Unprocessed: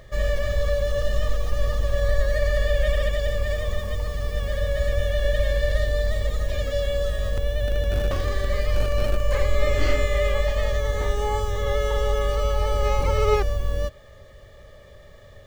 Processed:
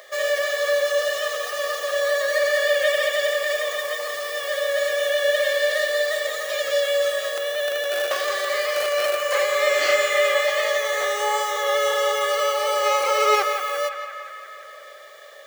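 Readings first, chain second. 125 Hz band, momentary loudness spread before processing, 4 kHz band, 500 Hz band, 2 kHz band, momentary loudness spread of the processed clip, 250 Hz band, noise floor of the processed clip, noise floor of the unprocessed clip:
below −40 dB, 4 LU, +9.0 dB, +4.5 dB, +9.5 dB, 7 LU, below −10 dB, −42 dBFS, −47 dBFS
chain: high-pass filter 550 Hz 24 dB per octave
high-shelf EQ 7,100 Hz +6 dB
notch filter 930 Hz, Q 5.4
on a send: feedback echo with a band-pass in the loop 174 ms, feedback 76%, band-pass 1,600 Hz, level −6.5 dB
on the sum: level +7.5 dB

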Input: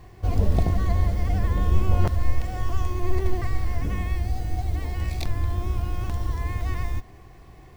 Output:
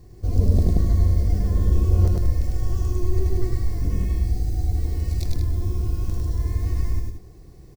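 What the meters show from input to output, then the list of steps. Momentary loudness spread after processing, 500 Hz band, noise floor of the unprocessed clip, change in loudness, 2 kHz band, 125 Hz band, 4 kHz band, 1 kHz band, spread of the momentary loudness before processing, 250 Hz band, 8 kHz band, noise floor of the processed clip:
7 LU, +0.5 dB, −47 dBFS, +3.0 dB, −10.0 dB, +3.5 dB, −2.5 dB, −9.0 dB, 6 LU, +2.5 dB, can't be measured, −45 dBFS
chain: flat-topped bell 1,500 Hz −12.5 dB 2.7 octaves
on a send: loudspeakers that aren't time-aligned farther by 35 metres −2 dB, 62 metres −8 dB

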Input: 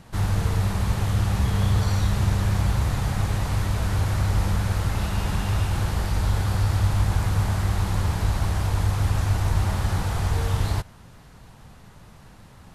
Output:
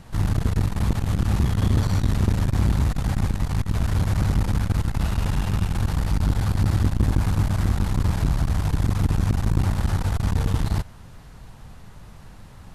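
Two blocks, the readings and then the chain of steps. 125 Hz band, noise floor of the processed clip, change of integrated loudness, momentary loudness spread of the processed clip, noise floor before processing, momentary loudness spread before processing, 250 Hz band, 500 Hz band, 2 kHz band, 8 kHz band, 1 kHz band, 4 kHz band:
+0.5 dB, −44 dBFS, +1.0 dB, 3 LU, −48 dBFS, 3 LU, +4.5 dB, −1.0 dB, −2.5 dB, −2.5 dB, −2.5 dB, −2.5 dB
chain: low-shelf EQ 67 Hz +8.5 dB
saturating transformer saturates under 190 Hz
level +1 dB

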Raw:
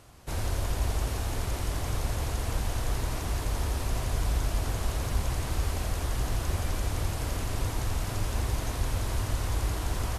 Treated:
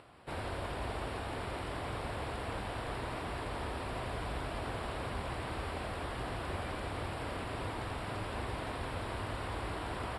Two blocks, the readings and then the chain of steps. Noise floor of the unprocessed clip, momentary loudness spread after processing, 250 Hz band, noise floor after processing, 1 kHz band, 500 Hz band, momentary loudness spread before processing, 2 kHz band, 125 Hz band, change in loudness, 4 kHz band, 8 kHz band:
−34 dBFS, 1 LU, −4.0 dB, −41 dBFS, −1.0 dB, −1.5 dB, 2 LU, −1.5 dB, −11.0 dB, −7.5 dB, −6.0 dB, −16.0 dB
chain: high-pass filter 300 Hz 6 dB per octave
upward compression, threshold −53 dBFS
moving average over 7 samples

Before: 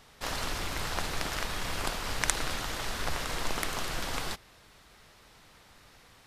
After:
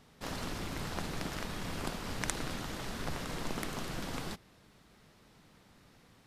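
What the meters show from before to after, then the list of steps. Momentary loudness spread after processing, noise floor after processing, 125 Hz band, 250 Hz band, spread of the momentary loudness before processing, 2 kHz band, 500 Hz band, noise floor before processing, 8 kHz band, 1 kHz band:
4 LU, −62 dBFS, −1.0 dB, +2.0 dB, 5 LU, −7.5 dB, −3.5 dB, −58 dBFS, −8.0 dB, −6.5 dB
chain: parametric band 200 Hz +11.5 dB 2.2 octaves
level −8 dB

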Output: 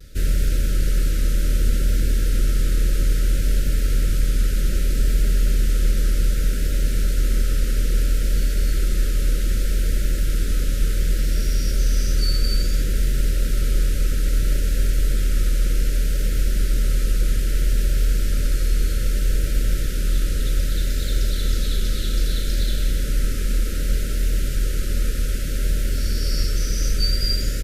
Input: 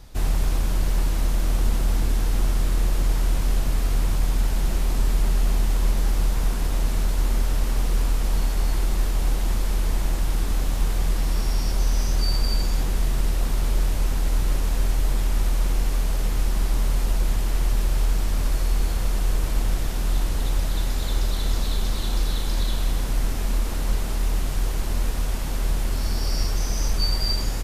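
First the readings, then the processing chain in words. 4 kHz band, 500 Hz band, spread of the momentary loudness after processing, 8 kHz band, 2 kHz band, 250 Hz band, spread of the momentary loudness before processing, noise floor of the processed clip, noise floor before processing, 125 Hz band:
+2.0 dB, +1.0 dB, 3 LU, +2.5 dB, +2.0 dB, +1.5 dB, 3 LU, −22 dBFS, −25 dBFS, +2.5 dB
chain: Chebyshev band-stop filter 590–1,300 Hz, order 5
pitch vibrato 0.63 Hz 32 cents
level +2.5 dB

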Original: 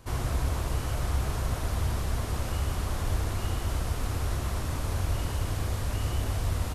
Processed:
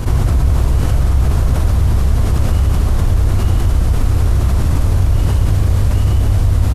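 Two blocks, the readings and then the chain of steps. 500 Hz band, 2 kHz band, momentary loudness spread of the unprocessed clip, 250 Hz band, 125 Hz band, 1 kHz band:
+10.5 dB, +7.5 dB, 2 LU, +14.5 dB, +16.5 dB, +8.5 dB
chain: low-shelf EQ 330 Hz +11.5 dB
slap from a distant wall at 19 metres, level −11 dB
envelope flattener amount 70%
level +2.5 dB

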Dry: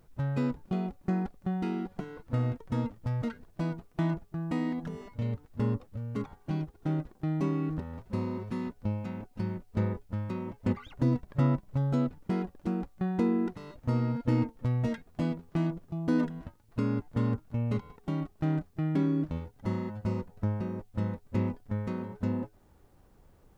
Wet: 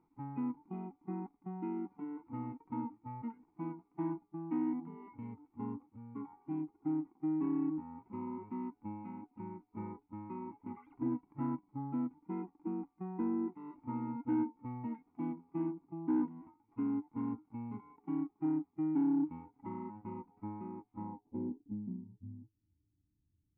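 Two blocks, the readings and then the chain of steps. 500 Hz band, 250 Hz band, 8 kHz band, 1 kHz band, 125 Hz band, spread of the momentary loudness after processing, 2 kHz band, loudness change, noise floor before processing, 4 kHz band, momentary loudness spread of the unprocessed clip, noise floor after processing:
−9.5 dB, −5.0 dB, can't be measured, −4.5 dB, −17.5 dB, 12 LU, below −15 dB, −7.5 dB, −61 dBFS, below −25 dB, 8 LU, −79 dBFS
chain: harmonic and percussive parts rebalanced percussive −13 dB
in parallel at +0.5 dB: downward compressor, threshold −43 dBFS, peak gain reduction 19.5 dB
on the sum: formant filter u
low-pass filter sweep 1,400 Hz → 100 Hz, 0:20.92–0:22.21
soft clipping −28 dBFS, distortion −19 dB
level +3 dB

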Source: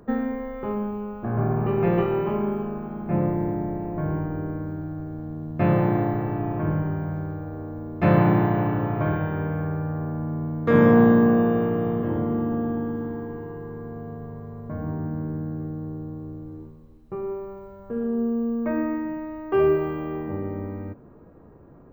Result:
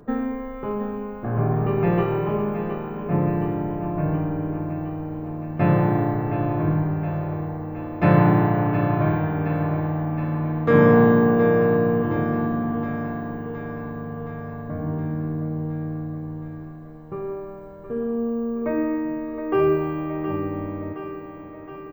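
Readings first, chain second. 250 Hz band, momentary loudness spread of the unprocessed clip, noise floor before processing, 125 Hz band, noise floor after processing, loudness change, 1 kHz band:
+1.0 dB, 17 LU, −49 dBFS, +2.5 dB, −38 dBFS, +1.5 dB, +3.0 dB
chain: comb filter 6.8 ms, depth 31%
on a send: feedback echo with a high-pass in the loop 718 ms, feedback 69%, high-pass 270 Hz, level −9 dB
on the sum: level +1 dB

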